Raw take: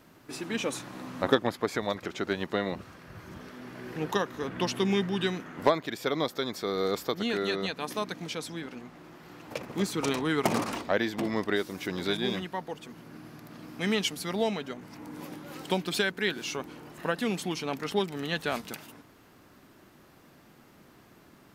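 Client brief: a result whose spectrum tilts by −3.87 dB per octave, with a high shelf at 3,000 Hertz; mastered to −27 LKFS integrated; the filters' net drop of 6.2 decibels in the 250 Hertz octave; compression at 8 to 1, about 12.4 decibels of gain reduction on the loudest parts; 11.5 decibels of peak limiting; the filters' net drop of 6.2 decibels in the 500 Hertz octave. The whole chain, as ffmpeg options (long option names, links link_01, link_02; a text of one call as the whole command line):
ffmpeg -i in.wav -af "equalizer=frequency=250:width_type=o:gain=-7,equalizer=frequency=500:width_type=o:gain=-5.5,highshelf=frequency=3000:gain=-3.5,acompressor=threshold=-34dB:ratio=8,volume=16dB,alimiter=limit=-14.5dB:level=0:latency=1" out.wav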